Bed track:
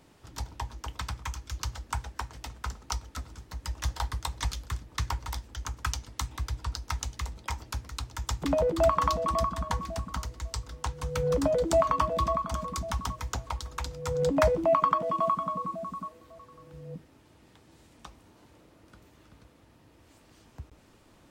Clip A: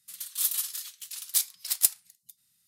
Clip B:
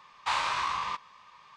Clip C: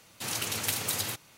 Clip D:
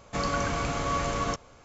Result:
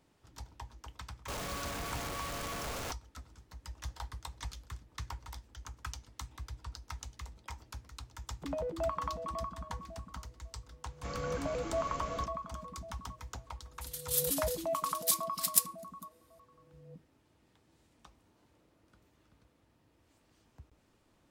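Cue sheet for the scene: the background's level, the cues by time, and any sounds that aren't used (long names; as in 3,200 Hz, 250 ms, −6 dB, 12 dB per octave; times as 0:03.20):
bed track −11 dB
0:01.28: mix in D −9.5 dB + sign of each sample alone
0:10.90: mix in D −13 dB
0:13.73: mix in A −4.5 dB
not used: B, C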